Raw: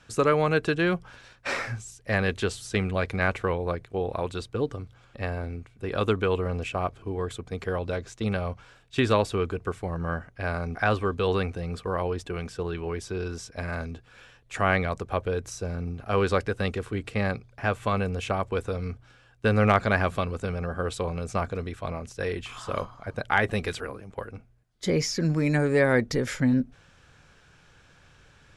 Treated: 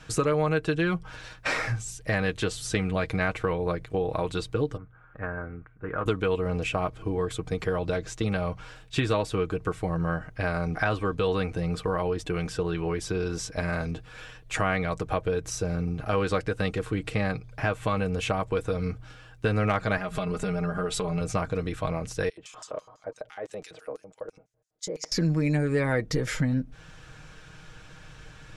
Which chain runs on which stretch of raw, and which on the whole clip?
4.77–6.06 ladder low-pass 1700 Hz, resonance 60% + Doppler distortion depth 0.16 ms
19.97–21.21 comb 4.9 ms, depth 88% + compressor 3:1, threshold -31 dBFS
22.29–25.12 compressor, threshold -30 dBFS + LFO band-pass square 6 Hz 550–6700 Hz
whole clip: low shelf 94 Hz +6 dB; comb 6.4 ms, depth 53%; compressor 2.5:1, threshold -33 dBFS; gain +6 dB

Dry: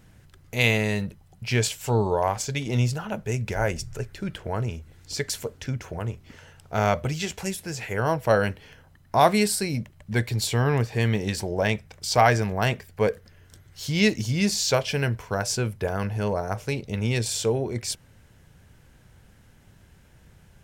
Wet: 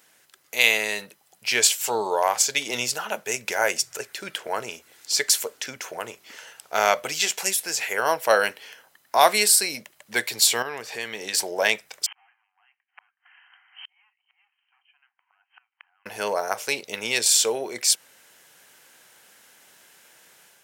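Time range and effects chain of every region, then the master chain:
10.62–11.34 high shelf 11000 Hz -6 dB + compressor 2.5:1, threshold -29 dBFS
12.06–16.06 overloaded stage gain 24 dB + brick-wall FIR band-pass 710–3200 Hz + flipped gate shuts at -37 dBFS, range -37 dB
whole clip: HPF 410 Hz 12 dB/oct; tilt +2.5 dB/oct; AGC gain up to 5 dB

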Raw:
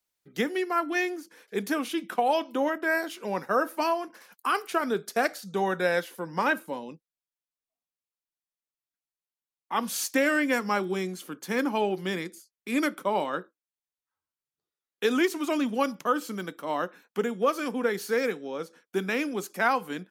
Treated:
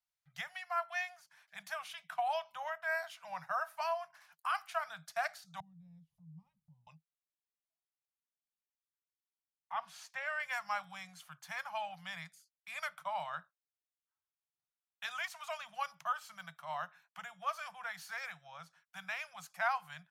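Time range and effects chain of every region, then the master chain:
5.6–6.87 inverse Chebyshev low-pass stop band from 580 Hz + upward compressor, threshold -42 dBFS
9.72–10.4 LPF 1800 Hz 6 dB/oct + bell 130 Hz -4.5 dB 0.3 oct
whole clip: Chebyshev band-stop 160–660 Hz, order 4; high shelf 8900 Hz -8.5 dB; gain -8 dB

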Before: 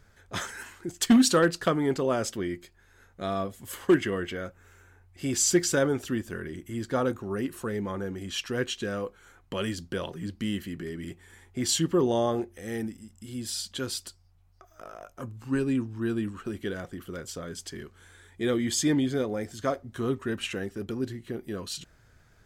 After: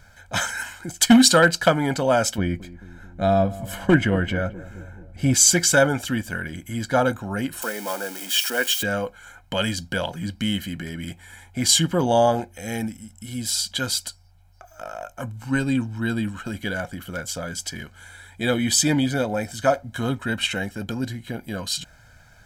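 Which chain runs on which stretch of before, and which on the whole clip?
2.38–5.34 tilt -2.5 dB/oct + darkening echo 0.217 s, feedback 65%, low-pass 1000 Hz, level -17 dB
7.62–8.83 switching spikes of -29.5 dBFS + HPF 280 Hz 24 dB/oct + notch 4000 Hz, Q 16
whole clip: low shelf 230 Hz -6 dB; comb 1.3 ms, depth 75%; gain +8 dB

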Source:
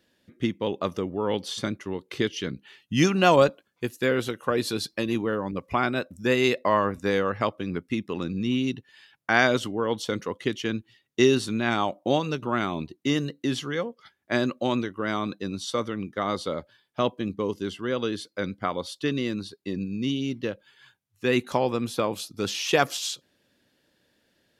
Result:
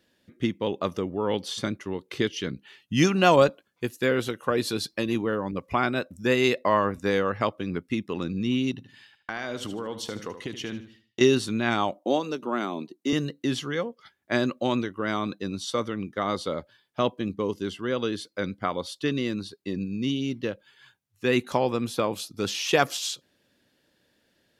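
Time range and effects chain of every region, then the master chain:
8.71–11.21 expander -57 dBFS + compressor, threshold -29 dBFS + feedback echo 76 ms, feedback 35%, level -11 dB
11.98–13.13 HPF 210 Hz 24 dB/oct + bell 2200 Hz -5.5 dB 1.8 oct
whole clip: dry

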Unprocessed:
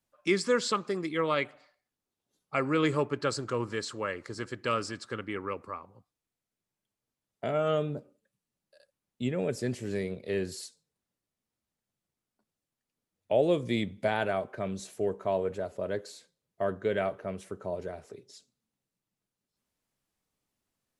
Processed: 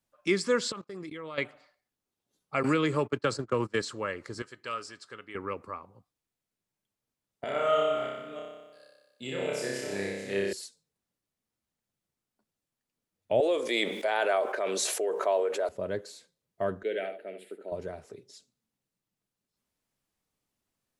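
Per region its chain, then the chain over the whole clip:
0.72–1.38 gate -42 dBFS, range -23 dB + level quantiser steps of 20 dB
2.63–3.82 gate -36 dBFS, range -26 dB + HPF 52 Hz + three-band squash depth 100%
4.42–5.35 low shelf 410 Hz -12 dB + resonator 140 Hz, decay 0.17 s, harmonics odd, mix 50%
7.44–10.53 reverse delay 0.318 s, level -7 dB + HPF 720 Hz 6 dB/oct + flutter echo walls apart 5.2 m, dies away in 1.2 s
13.4–15.69 HPF 400 Hz 24 dB/oct + tremolo 2.1 Hz, depth 71% + fast leveller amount 70%
16.83–17.72 HPF 310 Hz 24 dB/oct + fixed phaser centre 2600 Hz, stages 4 + echo 72 ms -8 dB
whole clip: dry

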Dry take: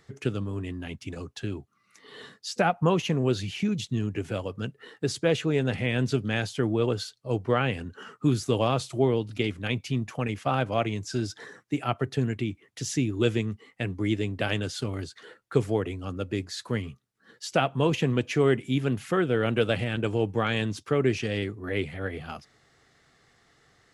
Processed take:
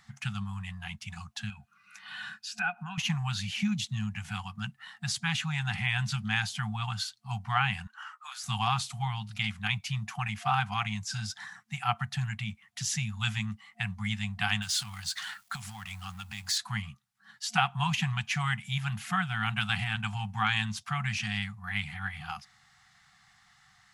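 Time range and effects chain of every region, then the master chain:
1.5–2.98 compressor 2.5:1, threshold -42 dBFS + small resonant body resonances 430/1500/2500 Hz, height 18 dB, ringing for 25 ms
7.87–8.44 HPF 940 Hz 24 dB/oct + tilt shelf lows +6 dB, about 1500 Hz
14.62–16.58 G.711 law mismatch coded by mu + compressor 3:1, threshold -36 dBFS + high shelf 2100 Hz +9.5 dB
whole clip: FFT band-reject 220–710 Hz; low shelf 260 Hz -6.5 dB; gain +2 dB

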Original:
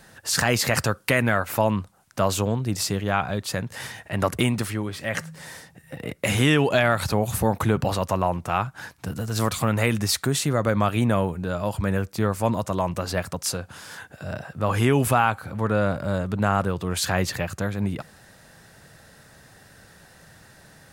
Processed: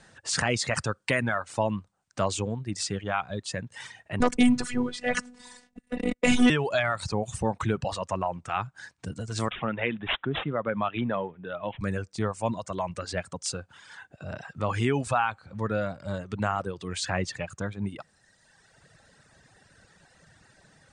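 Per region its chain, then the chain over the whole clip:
4.2–6.5 low shelf 410 Hz +8.5 dB + sample leveller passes 2 + robotiser 246 Hz
9.5–11.81 HPF 140 Hz + careless resampling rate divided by 6×, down none, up filtered
14.39–17.3 high shelf 12000 Hz -11 dB + mismatched tape noise reduction encoder only
whole clip: Chebyshev low-pass 9100 Hz, order 6; reverb removal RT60 1.6 s; gain -3.5 dB

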